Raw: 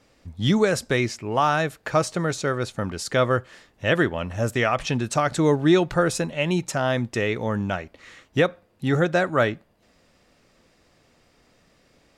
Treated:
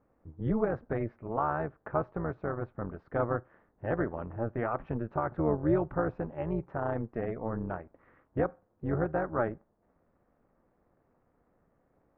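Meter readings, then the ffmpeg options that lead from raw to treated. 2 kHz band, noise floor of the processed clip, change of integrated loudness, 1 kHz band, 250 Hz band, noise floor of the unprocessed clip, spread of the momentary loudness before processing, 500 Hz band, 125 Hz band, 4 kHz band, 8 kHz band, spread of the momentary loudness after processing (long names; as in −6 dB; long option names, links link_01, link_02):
−16.0 dB, −73 dBFS, −10.0 dB, −9.0 dB, −9.5 dB, −62 dBFS, 8 LU, −9.0 dB, −9.0 dB, below −35 dB, below −40 dB, 8 LU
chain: -af "tremolo=f=230:d=0.788,lowpass=frequency=1400:width=0.5412,lowpass=frequency=1400:width=1.3066,volume=-5.5dB"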